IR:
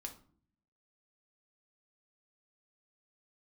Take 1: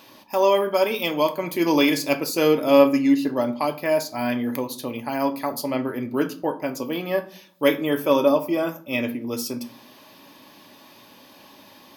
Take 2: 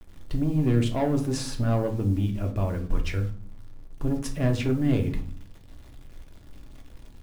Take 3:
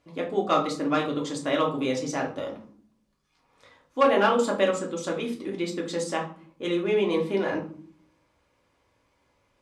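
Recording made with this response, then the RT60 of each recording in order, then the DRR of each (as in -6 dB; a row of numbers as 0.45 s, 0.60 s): 2; no single decay rate, 0.50 s, 0.50 s; 8.0 dB, 2.5 dB, -1.5 dB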